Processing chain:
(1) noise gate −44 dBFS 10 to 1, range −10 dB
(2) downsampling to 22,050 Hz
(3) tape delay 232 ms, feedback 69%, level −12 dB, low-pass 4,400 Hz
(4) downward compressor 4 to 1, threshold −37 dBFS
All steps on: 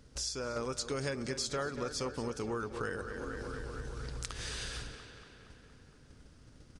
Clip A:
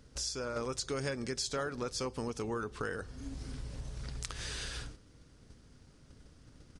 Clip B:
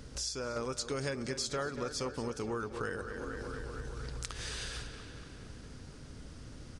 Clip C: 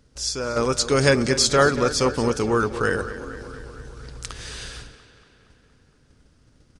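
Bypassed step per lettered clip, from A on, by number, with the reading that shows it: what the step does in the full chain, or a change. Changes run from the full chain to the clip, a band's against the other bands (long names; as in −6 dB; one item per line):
3, change in momentary loudness spread −7 LU
1, change in momentary loudness spread −1 LU
4, average gain reduction 10.0 dB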